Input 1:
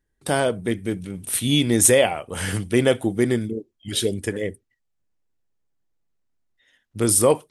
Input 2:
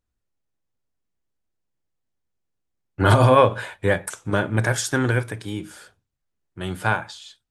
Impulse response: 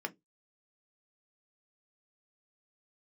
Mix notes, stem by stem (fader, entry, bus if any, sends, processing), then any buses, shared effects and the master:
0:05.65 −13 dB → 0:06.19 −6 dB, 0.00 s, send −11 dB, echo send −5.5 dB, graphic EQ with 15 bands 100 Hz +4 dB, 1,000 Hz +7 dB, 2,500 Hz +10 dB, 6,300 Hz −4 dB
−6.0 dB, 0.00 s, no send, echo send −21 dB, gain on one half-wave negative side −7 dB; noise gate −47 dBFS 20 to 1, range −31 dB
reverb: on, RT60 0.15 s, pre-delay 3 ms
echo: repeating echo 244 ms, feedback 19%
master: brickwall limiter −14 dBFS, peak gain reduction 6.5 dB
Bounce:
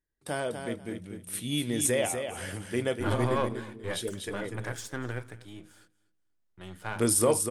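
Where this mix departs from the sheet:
stem 1: missing graphic EQ with 15 bands 100 Hz +4 dB, 1,000 Hz +7 dB, 2,500 Hz +10 dB, 6,300 Hz −4 dB
stem 2 −6.0 dB → −12.5 dB

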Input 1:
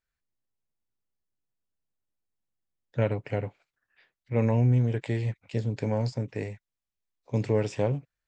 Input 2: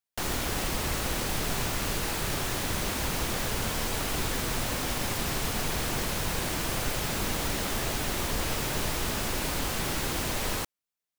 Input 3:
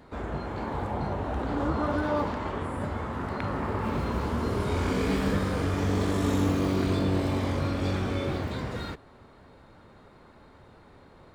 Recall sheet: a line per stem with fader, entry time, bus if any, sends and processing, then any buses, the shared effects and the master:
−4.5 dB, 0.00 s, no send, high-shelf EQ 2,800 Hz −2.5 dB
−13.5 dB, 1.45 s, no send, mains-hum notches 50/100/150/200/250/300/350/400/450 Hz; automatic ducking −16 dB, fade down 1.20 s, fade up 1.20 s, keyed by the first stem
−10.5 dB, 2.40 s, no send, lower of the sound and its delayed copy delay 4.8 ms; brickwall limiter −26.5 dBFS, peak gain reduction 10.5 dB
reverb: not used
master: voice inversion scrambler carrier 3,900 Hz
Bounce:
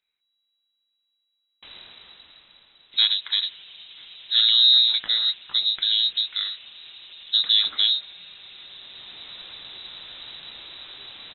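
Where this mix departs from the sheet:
stem 1 −4.5 dB → +5.0 dB
stem 3: entry 2.40 s → 2.80 s

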